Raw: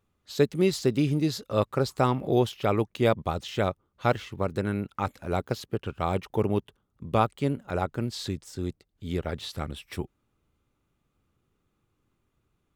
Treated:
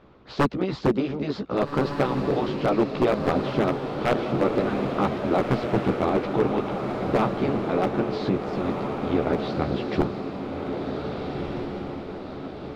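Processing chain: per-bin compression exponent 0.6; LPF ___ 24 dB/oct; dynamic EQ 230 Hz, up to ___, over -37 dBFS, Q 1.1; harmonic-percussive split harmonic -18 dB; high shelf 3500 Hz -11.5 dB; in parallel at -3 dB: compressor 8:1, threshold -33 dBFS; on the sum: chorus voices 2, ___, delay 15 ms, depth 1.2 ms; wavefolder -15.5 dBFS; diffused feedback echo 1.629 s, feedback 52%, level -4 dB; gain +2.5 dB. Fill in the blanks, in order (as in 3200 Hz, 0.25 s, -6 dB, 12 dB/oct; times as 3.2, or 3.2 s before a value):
4900 Hz, +7 dB, 2.3 Hz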